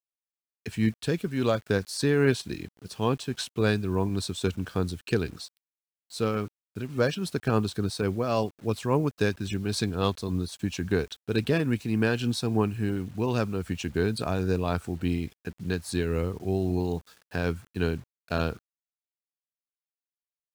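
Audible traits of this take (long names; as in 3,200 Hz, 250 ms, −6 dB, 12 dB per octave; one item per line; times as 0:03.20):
tremolo triangle 3.6 Hz, depth 40%
a quantiser's noise floor 10 bits, dither none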